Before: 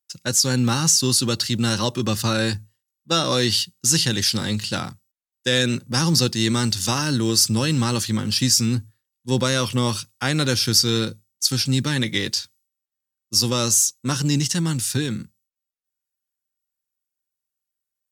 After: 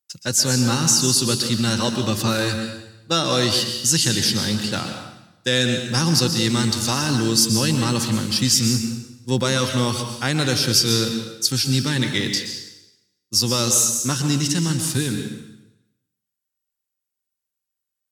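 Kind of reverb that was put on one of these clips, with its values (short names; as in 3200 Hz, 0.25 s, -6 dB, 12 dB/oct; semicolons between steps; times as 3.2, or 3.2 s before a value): plate-style reverb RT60 0.9 s, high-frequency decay 0.95×, pre-delay 0.11 s, DRR 5.5 dB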